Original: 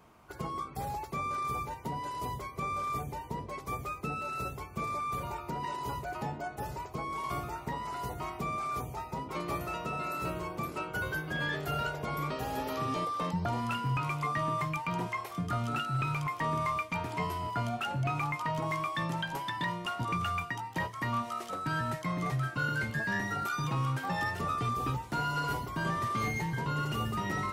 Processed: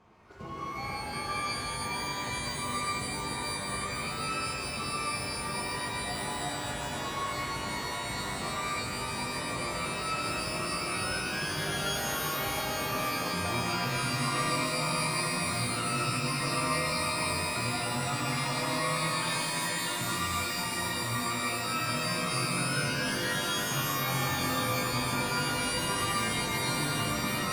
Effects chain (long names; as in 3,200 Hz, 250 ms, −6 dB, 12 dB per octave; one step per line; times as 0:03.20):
high-frequency loss of the air 79 metres
reversed playback
upward compression, threshold −46 dBFS
reversed playback
reverb with rising layers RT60 3.8 s, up +12 semitones, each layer −2 dB, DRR −6.5 dB
level −7.5 dB